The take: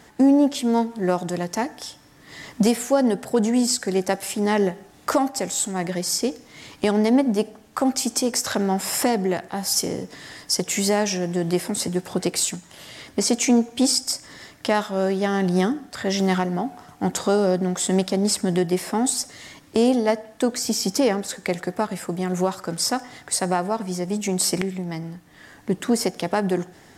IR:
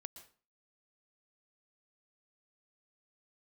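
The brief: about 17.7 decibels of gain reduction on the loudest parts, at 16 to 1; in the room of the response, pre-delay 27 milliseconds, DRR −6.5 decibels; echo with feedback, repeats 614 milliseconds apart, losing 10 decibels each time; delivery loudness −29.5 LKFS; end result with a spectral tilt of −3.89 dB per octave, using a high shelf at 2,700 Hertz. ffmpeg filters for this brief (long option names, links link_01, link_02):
-filter_complex "[0:a]highshelf=frequency=2700:gain=-3,acompressor=threshold=-31dB:ratio=16,aecho=1:1:614|1228|1842|2456:0.316|0.101|0.0324|0.0104,asplit=2[link_01][link_02];[1:a]atrim=start_sample=2205,adelay=27[link_03];[link_02][link_03]afir=irnorm=-1:irlink=0,volume=12dB[link_04];[link_01][link_04]amix=inputs=2:normalize=0,volume=-1.5dB"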